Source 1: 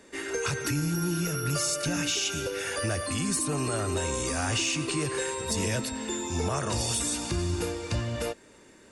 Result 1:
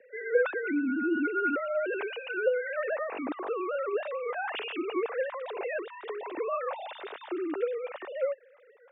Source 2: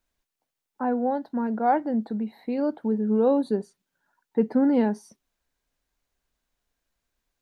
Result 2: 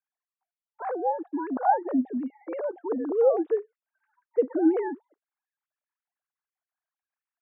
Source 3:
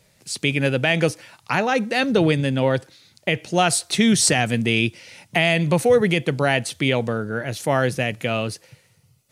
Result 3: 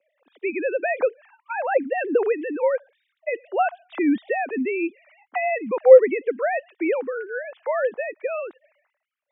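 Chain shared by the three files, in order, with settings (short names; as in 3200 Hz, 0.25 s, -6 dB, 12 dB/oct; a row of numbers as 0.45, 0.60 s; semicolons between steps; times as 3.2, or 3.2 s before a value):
sine-wave speech; frequency shift +31 Hz; three-band isolator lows -18 dB, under 220 Hz, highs -20 dB, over 2400 Hz; gain -1 dB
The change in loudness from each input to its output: -3.0, -2.0, -2.5 LU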